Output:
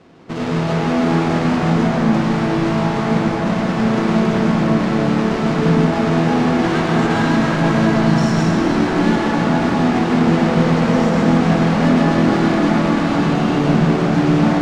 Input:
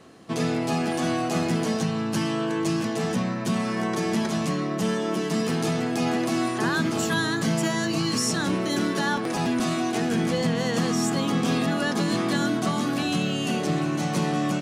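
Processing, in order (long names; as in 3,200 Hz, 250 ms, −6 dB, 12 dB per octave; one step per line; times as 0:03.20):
each half-wave held at its own peak
high-frequency loss of the air 120 metres
convolution reverb RT60 5.1 s, pre-delay 93 ms, DRR −5 dB
level −2 dB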